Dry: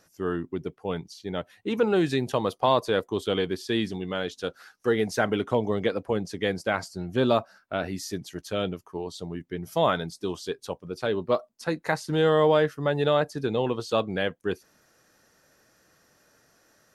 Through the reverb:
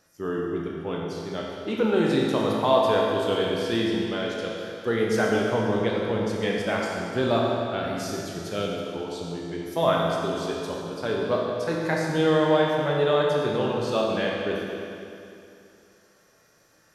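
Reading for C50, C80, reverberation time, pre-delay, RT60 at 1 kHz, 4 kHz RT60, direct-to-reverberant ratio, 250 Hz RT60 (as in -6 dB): -0.5 dB, 1.0 dB, 2.7 s, 18 ms, 2.7 s, 2.4 s, -3.0 dB, 2.7 s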